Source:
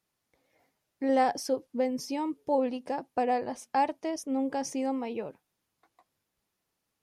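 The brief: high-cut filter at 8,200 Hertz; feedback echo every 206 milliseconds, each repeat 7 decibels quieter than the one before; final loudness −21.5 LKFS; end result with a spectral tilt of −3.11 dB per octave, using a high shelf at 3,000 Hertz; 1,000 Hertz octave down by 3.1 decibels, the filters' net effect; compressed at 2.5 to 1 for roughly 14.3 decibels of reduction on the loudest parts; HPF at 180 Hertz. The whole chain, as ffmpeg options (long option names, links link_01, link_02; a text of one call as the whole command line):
ffmpeg -i in.wav -af "highpass=180,lowpass=8200,equalizer=frequency=1000:width_type=o:gain=-4,highshelf=frequency=3000:gain=-4.5,acompressor=threshold=-46dB:ratio=2.5,aecho=1:1:206|412|618|824|1030:0.447|0.201|0.0905|0.0407|0.0183,volume=22dB" out.wav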